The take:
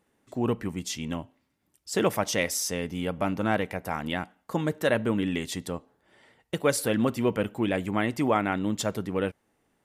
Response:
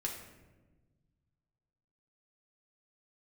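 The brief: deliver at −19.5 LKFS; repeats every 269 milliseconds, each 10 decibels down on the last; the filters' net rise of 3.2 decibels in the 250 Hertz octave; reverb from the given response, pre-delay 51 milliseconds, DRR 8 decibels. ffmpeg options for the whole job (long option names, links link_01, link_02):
-filter_complex "[0:a]equalizer=frequency=250:width_type=o:gain=4,aecho=1:1:269|538|807|1076:0.316|0.101|0.0324|0.0104,asplit=2[link_01][link_02];[1:a]atrim=start_sample=2205,adelay=51[link_03];[link_02][link_03]afir=irnorm=-1:irlink=0,volume=-9dB[link_04];[link_01][link_04]amix=inputs=2:normalize=0,volume=6dB"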